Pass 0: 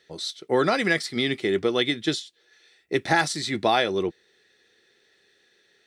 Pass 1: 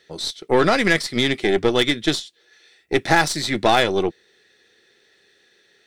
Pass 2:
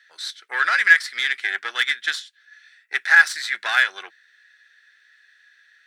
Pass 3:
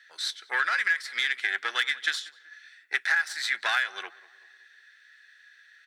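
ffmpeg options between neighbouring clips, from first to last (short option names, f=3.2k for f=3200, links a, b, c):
-af "aeval=exprs='0.473*(cos(1*acos(clip(val(0)/0.473,-1,1)))-cos(1*PI/2))+0.0335*(cos(8*acos(clip(val(0)/0.473,-1,1)))-cos(8*PI/2))':c=same,volume=4.5dB"
-af "highpass=f=1.6k:t=q:w=5.7,volume=-5.5dB"
-filter_complex "[0:a]acompressor=threshold=-22dB:ratio=10,asplit=2[a][b];[b]adelay=189,lowpass=f=1.8k:p=1,volume=-19dB,asplit=2[c][d];[d]adelay=189,lowpass=f=1.8k:p=1,volume=0.49,asplit=2[e][f];[f]adelay=189,lowpass=f=1.8k:p=1,volume=0.49,asplit=2[g][h];[h]adelay=189,lowpass=f=1.8k:p=1,volume=0.49[i];[a][c][e][g][i]amix=inputs=5:normalize=0"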